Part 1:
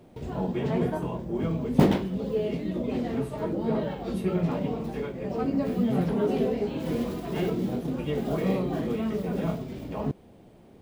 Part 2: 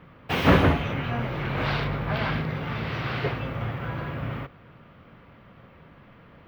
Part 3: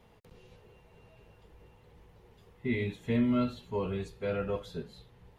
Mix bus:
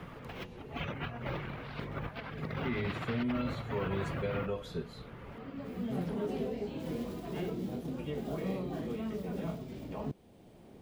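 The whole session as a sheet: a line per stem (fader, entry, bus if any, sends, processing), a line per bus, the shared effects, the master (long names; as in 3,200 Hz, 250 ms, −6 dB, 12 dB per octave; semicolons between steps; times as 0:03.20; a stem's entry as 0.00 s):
−9.5 dB, 0.00 s, no send, automatic ducking −19 dB, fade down 0.30 s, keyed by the third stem
−7.5 dB, 0.00 s, no send, reverb reduction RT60 0.5 s; compressor whose output falls as the input rises −33 dBFS, ratio −0.5
+0.5 dB, 0.00 s, no send, brickwall limiter −26.5 dBFS, peak gain reduction 7.5 dB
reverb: not used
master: multiband upward and downward compressor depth 40%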